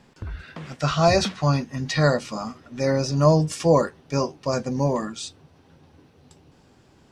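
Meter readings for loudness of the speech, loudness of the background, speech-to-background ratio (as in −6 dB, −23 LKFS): −22.5 LKFS, −36.5 LKFS, 14.0 dB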